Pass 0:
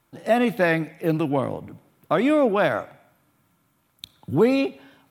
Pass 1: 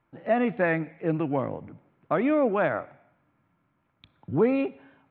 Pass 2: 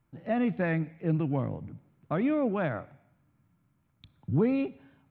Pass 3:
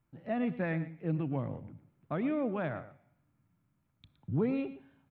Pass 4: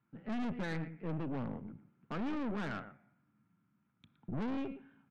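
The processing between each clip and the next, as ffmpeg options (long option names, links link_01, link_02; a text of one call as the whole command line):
ffmpeg -i in.wav -af "lowpass=frequency=2500:width=0.5412,lowpass=frequency=2500:width=1.3066,volume=-4dB" out.wav
ffmpeg -i in.wav -af "bass=frequency=250:gain=13,treble=frequency=4000:gain=14,volume=-7.5dB" out.wav
ffmpeg -i in.wav -af "aecho=1:1:116:0.188,volume=-5dB" out.wav
ffmpeg -i in.wav -af "highpass=140,equalizer=frequency=210:width_type=q:width=4:gain=9,equalizer=frequency=590:width_type=q:width=4:gain=-7,equalizer=frequency=1400:width_type=q:width=4:gain=7,lowpass=frequency=3300:width=0.5412,lowpass=frequency=3300:width=1.3066,aeval=exprs='(tanh(70.8*val(0)+0.6)-tanh(0.6))/70.8':channel_layout=same,volume=2dB" out.wav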